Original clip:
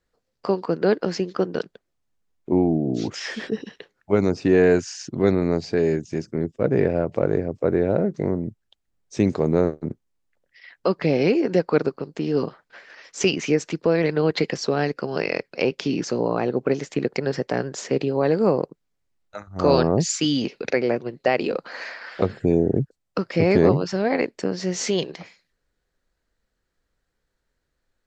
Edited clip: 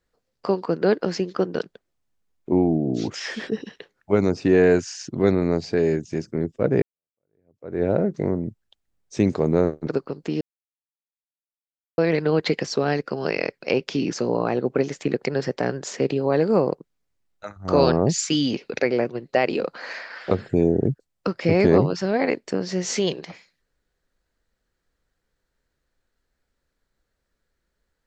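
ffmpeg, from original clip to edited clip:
ffmpeg -i in.wav -filter_complex "[0:a]asplit=5[link_01][link_02][link_03][link_04][link_05];[link_01]atrim=end=6.82,asetpts=PTS-STARTPTS,afade=type=out:start_time=6.816:duration=0.004:curve=hsin[link_06];[link_02]atrim=start=6.82:end=9.872,asetpts=PTS-STARTPTS,afade=type=in:duration=1.01:curve=exp[link_07];[link_03]atrim=start=11.778:end=12.32,asetpts=PTS-STARTPTS,afade=type=out:start_time=0.538:duration=0.004:curve=hsin[link_08];[link_04]atrim=start=12.32:end=13.89,asetpts=PTS-STARTPTS,volume=0[link_09];[link_05]atrim=start=13.89,asetpts=PTS-STARTPTS,afade=type=in:duration=0.004:curve=hsin[link_10];[link_06][link_07]concat=n=2:v=0:a=1[link_11];[link_08][link_09][link_10]concat=n=3:v=0:a=1[link_12];[link_11][link_12]acrossfade=duration=0.004:curve1=hsin:curve2=hsin" out.wav

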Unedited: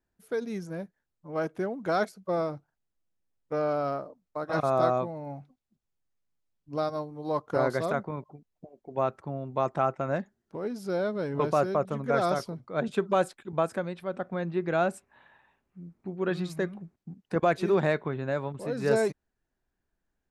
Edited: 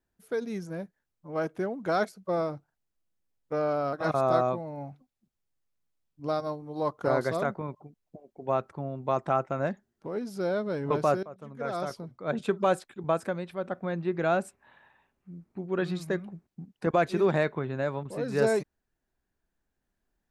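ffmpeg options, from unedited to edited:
ffmpeg -i in.wav -filter_complex "[0:a]asplit=3[link_01][link_02][link_03];[link_01]atrim=end=3.932[link_04];[link_02]atrim=start=4.418:end=11.72,asetpts=PTS-STARTPTS,afade=type=out:start_time=7.298:duration=0.004:curve=hsin:silence=0.0891251[link_05];[link_03]atrim=start=11.72,asetpts=PTS-STARTPTS,afade=type=in:duration=1.23:silence=0.0891251[link_06];[link_05][link_06]concat=n=2:v=0:a=1[link_07];[link_04][link_07]acrossfade=duration=0.004:curve1=hsin:curve2=hsin" out.wav

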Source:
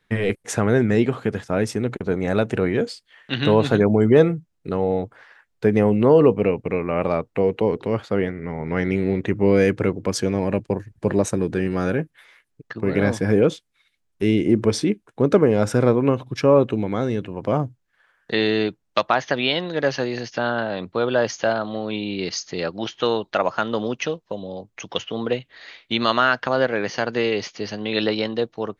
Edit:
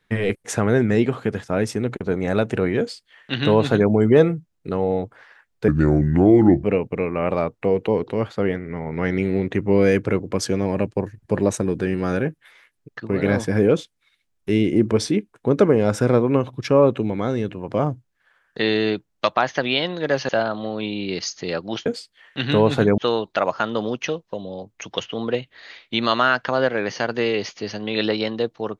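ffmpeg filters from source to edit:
ffmpeg -i in.wav -filter_complex "[0:a]asplit=6[link_01][link_02][link_03][link_04][link_05][link_06];[link_01]atrim=end=5.684[link_07];[link_02]atrim=start=5.68:end=6.37,asetpts=PTS-STARTPTS,asetrate=31752,aresample=44100,atrim=end_sample=42262,asetpts=PTS-STARTPTS[link_08];[link_03]atrim=start=6.366:end=20.022[link_09];[link_04]atrim=start=21.388:end=22.962[link_10];[link_05]atrim=start=2.788:end=3.912[link_11];[link_06]atrim=start=22.958[link_12];[link_07][link_08]acrossfade=duration=0.004:curve1=hsin:curve2=hsin[link_13];[link_13][link_09]acrossfade=duration=0.004:curve1=hsin:curve2=hsin[link_14];[link_14][link_10]acrossfade=duration=0.004:curve1=hsin:curve2=hsin[link_15];[link_15][link_11]acrossfade=duration=0.004:curve1=hsin:curve2=hsin[link_16];[link_16][link_12]acrossfade=duration=0.004:curve1=hsin:curve2=hsin" out.wav

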